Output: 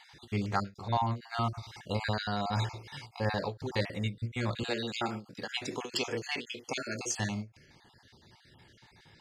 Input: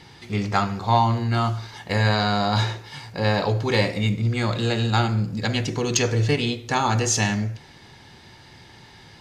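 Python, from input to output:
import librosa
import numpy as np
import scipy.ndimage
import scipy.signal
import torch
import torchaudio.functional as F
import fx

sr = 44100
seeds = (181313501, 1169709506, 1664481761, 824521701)

y = fx.spec_dropout(x, sr, seeds[0], share_pct=36)
y = fx.highpass(y, sr, hz=280.0, slope=12, at=(4.63, 7.18))
y = fx.rider(y, sr, range_db=3, speed_s=0.5)
y = fx.end_taper(y, sr, db_per_s=250.0)
y = y * librosa.db_to_amplitude(-8.0)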